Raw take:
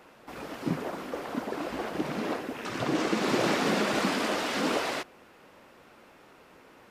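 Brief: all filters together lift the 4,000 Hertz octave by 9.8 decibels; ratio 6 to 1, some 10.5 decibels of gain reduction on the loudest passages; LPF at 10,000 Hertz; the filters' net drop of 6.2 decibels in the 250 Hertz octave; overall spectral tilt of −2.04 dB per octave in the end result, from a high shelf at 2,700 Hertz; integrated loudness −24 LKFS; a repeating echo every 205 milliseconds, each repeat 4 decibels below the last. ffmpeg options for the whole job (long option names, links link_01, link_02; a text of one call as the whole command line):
ffmpeg -i in.wav -af "lowpass=10000,equalizer=frequency=250:width_type=o:gain=-8.5,highshelf=frequency=2700:gain=8.5,equalizer=frequency=4000:width_type=o:gain=5.5,acompressor=threshold=-33dB:ratio=6,aecho=1:1:205|410|615|820|1025|1230|1435|1640|1845:0.631|0.398|0.25|0.158|0.0994|0.0626|0.0394|0.0249|0.0157,volume=9.5dB" out.wav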